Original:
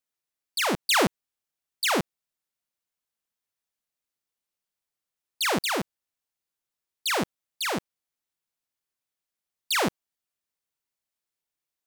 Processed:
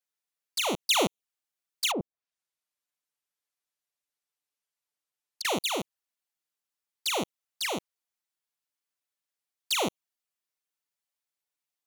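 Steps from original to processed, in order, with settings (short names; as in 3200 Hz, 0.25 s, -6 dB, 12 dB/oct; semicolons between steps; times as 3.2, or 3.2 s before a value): 1.91–5.45 treble ducked by the level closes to 460 Hz, closed at -25 dBFS; low shelf 290 Hz -10.5 dB; envelope flanger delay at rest 6.9 ms, full sweep at -25.5 dBFS; gain +1.5 dB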